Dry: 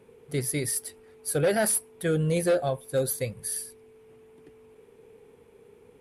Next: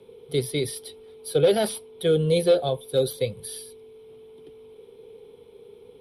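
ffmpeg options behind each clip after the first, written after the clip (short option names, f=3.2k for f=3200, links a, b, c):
-filter_complex "[0:a]superequalizer=7b=2:10b=0.708:11b=0.398:13b=3.16:15b=0.316,acrossover=split=160|520|6000[a][b][c][d];[d]acompressor=threshold=-38dB:ratio=6[e];[a][b][c][e]amix=inputs=4:normalize=0,volume=1dB"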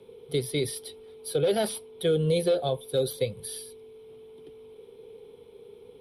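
-af "alimiter=limit=-15dB:level=0:latency=1:release=159,volume=-1dB"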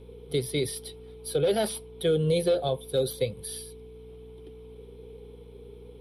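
-af "aeval=exprs='val(0)+0.00398*(sin(2*PI*60*n/s)+sin(2*PI*2*60*n/s)/2+sin(2*PI*3*60*n/s)/3+sin(2*PI*4*60*n/s)/4+sin(2*PI*5*60*n/s)/5)':c=same"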